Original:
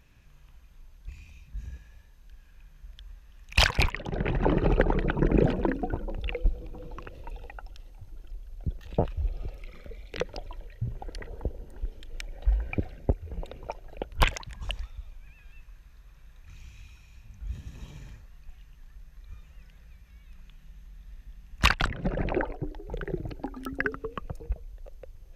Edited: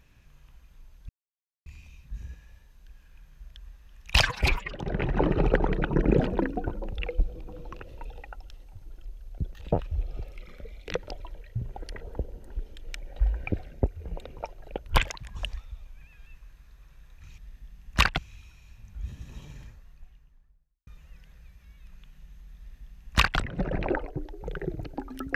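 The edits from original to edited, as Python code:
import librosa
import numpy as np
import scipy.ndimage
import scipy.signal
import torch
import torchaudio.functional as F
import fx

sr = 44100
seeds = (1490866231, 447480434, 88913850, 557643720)

y = fx.studio_fade_out(x, sr, start_s=18.05, length_s=1.28)
y = fx.edit(y, sr, fx.insert_silence(at_s=1.09, length_s=0.57),
    fx.stretch_span(start_s=3.64, length_s=0.34, factor=1.5),
    fx.duplicate(start_s=21.03, length_s=0.8, to_s=16.64), tone=tone)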